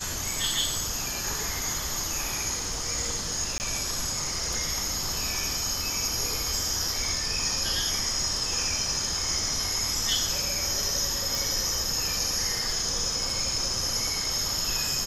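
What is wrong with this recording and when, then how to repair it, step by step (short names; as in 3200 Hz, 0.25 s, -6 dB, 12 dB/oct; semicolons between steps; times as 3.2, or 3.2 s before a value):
3.58–3.6 gap 19 ms
11.35 pop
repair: de-click; interpolate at 3.58, 19 ms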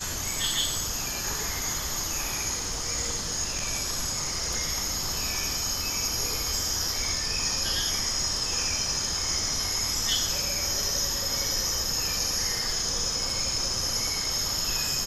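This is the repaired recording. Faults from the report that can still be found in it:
none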